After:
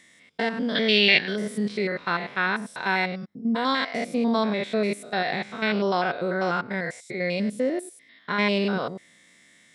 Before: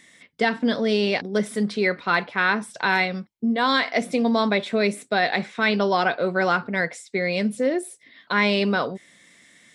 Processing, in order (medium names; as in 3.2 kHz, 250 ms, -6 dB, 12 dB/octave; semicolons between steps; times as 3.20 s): spectrogram pixelated in time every 100 ms; 0.75–1.36 s: high-order bell 2.6 kHz +14.5 dB; trim -1.5 dB